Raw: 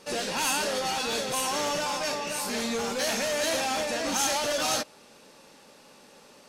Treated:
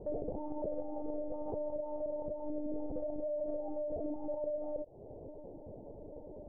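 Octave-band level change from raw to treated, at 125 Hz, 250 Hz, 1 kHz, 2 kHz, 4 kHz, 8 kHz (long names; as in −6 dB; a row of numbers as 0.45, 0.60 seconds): −6.5 dB, −5.5 dB, −19.0 dB, below −40 dB, below −40 dB, below −40 dB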